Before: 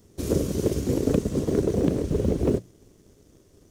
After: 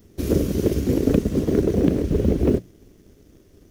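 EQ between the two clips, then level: graphic EQ 125/500/1000/4000/8000 Hz -5/-4/-6/-3/-10 dB; +7.0 dB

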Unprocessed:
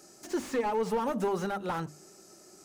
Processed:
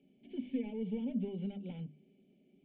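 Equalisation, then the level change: vocal tract filter i; fixed phaser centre 320 Hz, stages 6; +6.0 dB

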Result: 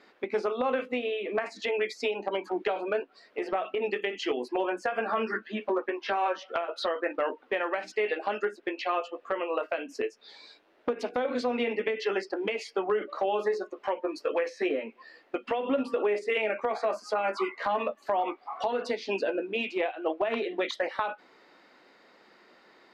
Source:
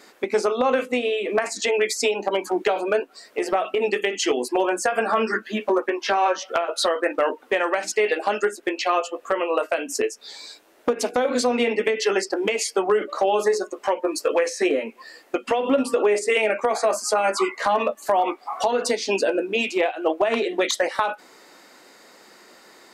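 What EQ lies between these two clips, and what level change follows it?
air absorption 340 m; high shelf 3200 Hz +10.5 dB; -7.0 dB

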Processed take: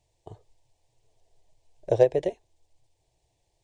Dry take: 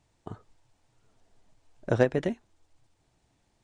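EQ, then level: fixed phaser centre 560 Hz, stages 4; dynamic EQ 530 Hz, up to +6 dB, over -37 dBFS, Q 0.9; 0.0 dB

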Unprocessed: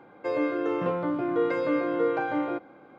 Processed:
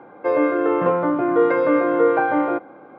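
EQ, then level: dynamic EQ 1700 Hz, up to +3 dB, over -39 dBFS, Q 0.84; band-pass 1100 Hz, Q 0.6; tilt -3 dB/oct; +9.0 dB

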